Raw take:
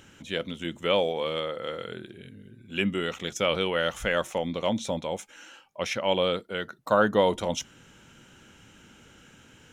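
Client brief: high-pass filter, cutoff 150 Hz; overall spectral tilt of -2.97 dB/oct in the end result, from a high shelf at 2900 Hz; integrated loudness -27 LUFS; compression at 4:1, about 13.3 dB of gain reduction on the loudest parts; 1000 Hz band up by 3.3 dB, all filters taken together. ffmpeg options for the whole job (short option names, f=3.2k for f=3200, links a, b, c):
-af "highpass=150,equalizer=f=1k:t=o:g=3.5,highshelf=f=2.9k:g=4.5,acompressor=threshold=-31dB:ratio=4,volume=8.5dB"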